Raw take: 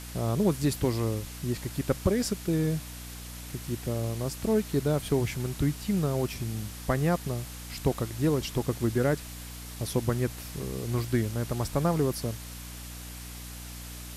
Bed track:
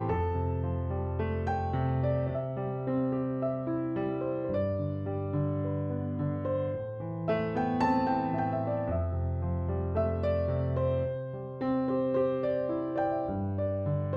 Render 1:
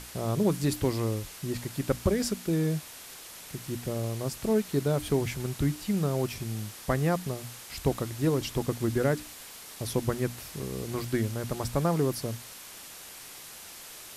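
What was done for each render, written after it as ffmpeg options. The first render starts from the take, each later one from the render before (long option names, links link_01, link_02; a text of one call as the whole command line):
ffmpeg -i in.wav -af "bandreject=frequency=60:width_type=h:width=6,bandreject=frequency=120:width_type=h:width=6,bandreject=frequency=180:width_type=h:width=6,bandreject=frequency=240:width_type=h:width=6,bandreject=frequency=300:width_type=h:width=6" out.wav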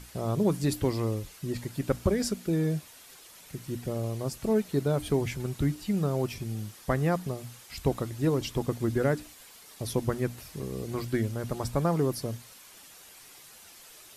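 ffmpeg -i in.wav -af "afftdn=noise_reduction=8:noise_floor=-46" out.wav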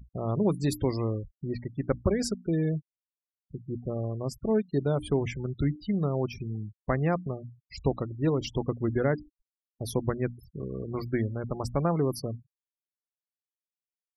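ffmpeg -i in.wav -af "adynamicequalizer=threshold=0.00141:dfrequency=8700:dqfactor=4.1:tfrequency=8700:tqfactor=4.1:attack=5:release=100:ratio=0.375:range=1.5:mode=cutabove:tftype=bell,afftfilt=real='re*gte(hypot(re,im),0.0141)':imag='im*gte(hypot(re,im),0.0141)':win_size=1024:overlap=0.75" out.wav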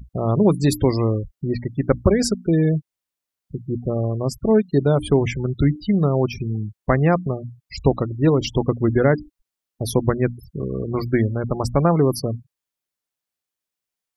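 ffmpeg -i in.wav -af "volume=9.5dB" out.wav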